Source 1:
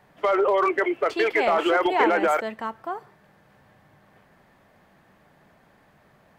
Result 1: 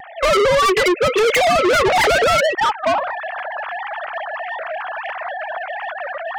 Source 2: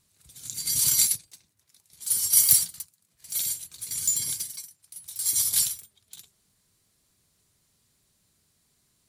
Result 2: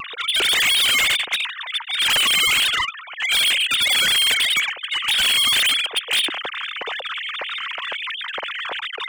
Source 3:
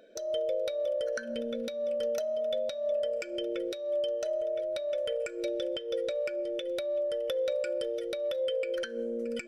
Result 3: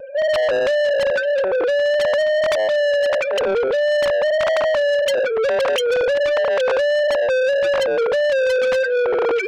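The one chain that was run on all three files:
sine-wave speech; dynamic EQ 840 Hz, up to -8 dB, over -39 dBFS, Q 1.3; in parallel at +2 dB: compressor, threshold -34 dBFS; on the sum: limiter -19 dBFS; reverse; upward compressor, threshold -38 dBFS; reverse; vibrato 1.6 Hz 27 cents; soft clip -36.5 dBFS; match loudness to -18 LUFS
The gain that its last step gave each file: +23.0, +20.0, +20.0 dB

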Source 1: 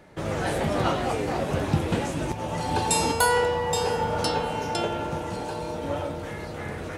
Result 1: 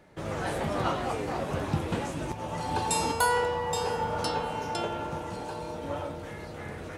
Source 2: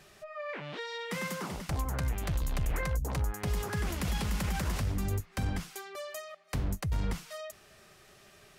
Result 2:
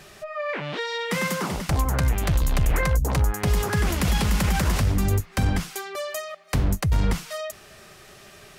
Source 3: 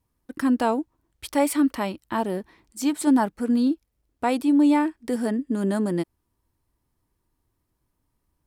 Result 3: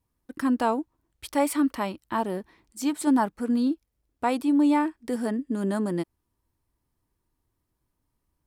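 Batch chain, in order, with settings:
dynamic EQ 1100 Hz, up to +4 dB, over -38 dBFS, Q 1.9; normalise peaks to -12 dBFS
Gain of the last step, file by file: -5.5, +10.0, -3.0 dB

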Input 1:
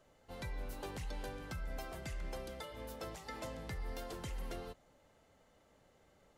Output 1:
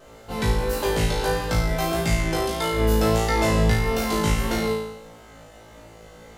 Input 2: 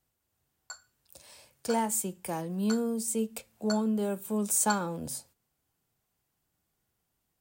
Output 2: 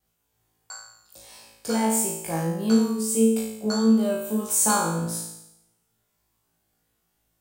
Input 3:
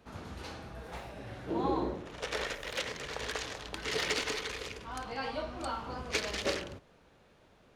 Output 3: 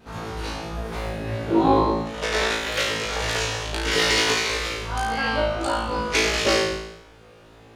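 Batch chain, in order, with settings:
flutter echo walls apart 3.1 m, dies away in 0.8 s; vibrato 1.6 Hz 24 cents; match loudness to -23 LUFS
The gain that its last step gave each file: +17.0, +1.0, +7.5 dB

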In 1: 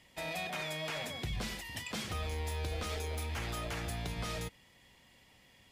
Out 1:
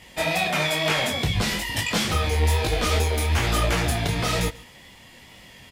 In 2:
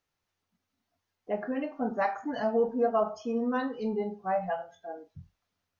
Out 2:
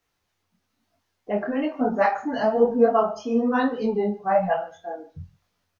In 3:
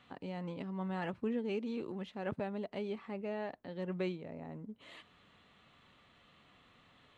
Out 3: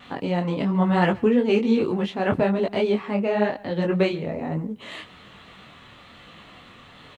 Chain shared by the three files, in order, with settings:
wow and flutter 29 cents; echo 0.143 s -23 dB; detuned doubles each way 38 cents; match loudness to -23 LUFS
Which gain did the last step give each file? +19.0, +11.5, +21.0 dB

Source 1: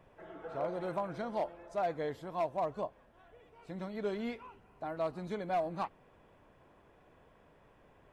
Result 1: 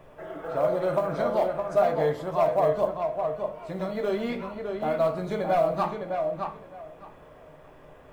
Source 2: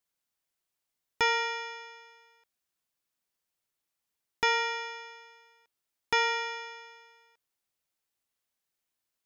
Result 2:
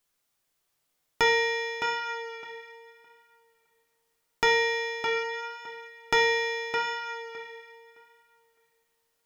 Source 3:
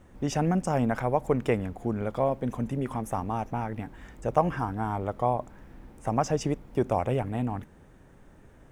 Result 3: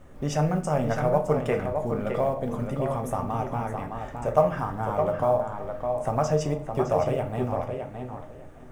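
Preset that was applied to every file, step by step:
dynamic EQ 300 Hz, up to -6 dB, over -45 dBFS, Q 3.7; in parallel at -2.5 dB: compressor 16:1, threshold -34 dBFS; on the sum: small resonant body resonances 610/1200 Hz, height 8 dB, ringing for 40 ms; companded quantiser 8-bit; on a send: tape echo 0.612 s, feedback 20%, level -5 dB, low-pass 3700 Hz; on the sum: shoebox room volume 44 m³, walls mixed, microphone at 0.37 m; match loudness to -27 LUFS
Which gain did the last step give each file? +3.0, 0.0, -3.0 dB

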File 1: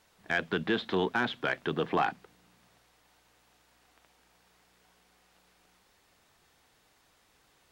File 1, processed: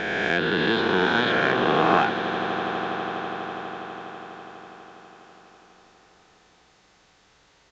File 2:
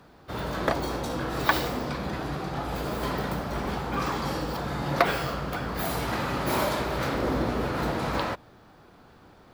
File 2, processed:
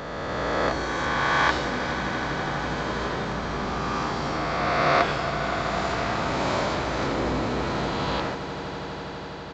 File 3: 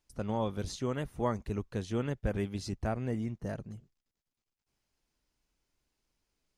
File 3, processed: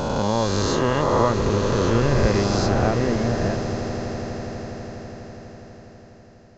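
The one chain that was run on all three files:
spectral swells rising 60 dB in 2.96 s; downsampling 16000 Hz; swelling echo 82 ms, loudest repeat 8, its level -16 dB; normalise peaks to -6 dBFS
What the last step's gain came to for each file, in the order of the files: +2.5, -4.0, +8.5 dB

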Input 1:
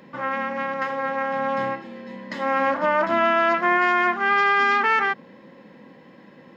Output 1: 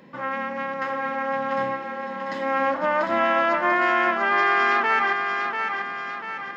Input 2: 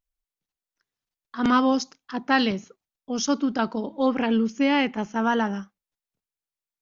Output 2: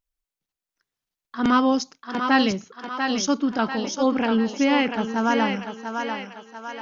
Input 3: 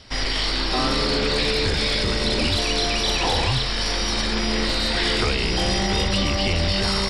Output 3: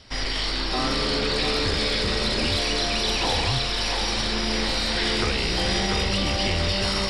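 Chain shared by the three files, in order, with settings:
thinning echo 0.692 s, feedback 53%, high-pass 370 Hz, level -5 dB; match loudness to -23 LUFS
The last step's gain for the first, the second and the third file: -2.0, +1.0, -3.0 dB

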